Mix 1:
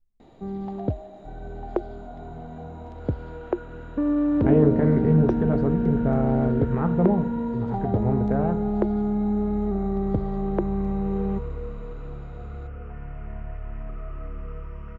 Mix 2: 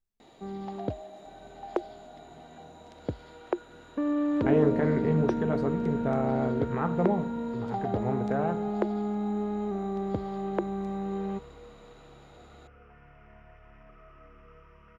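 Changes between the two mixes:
second sound -9.0 dB; master: add tilt EQ +3 dB/octave

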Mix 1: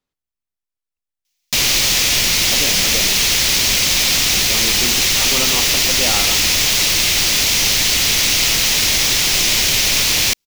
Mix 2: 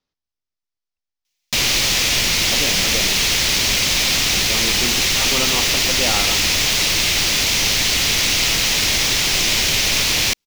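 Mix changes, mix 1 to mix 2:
speech: add resonant low-pass 5.4 kHz, resonance Q 2.6; master: add treble shelf 6.2 kHz -6.5 dB

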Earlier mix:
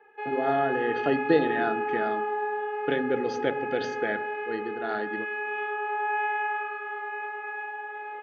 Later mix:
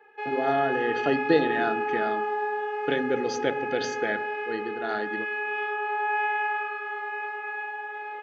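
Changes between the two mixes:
speech: add distance through air 87 m; master: remove distance through air 250 m

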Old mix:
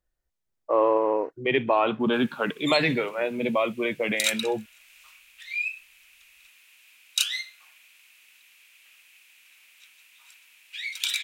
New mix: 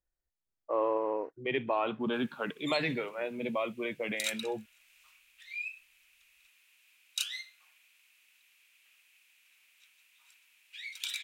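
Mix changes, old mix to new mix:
speech -8.5 dB; background -9.5 dB

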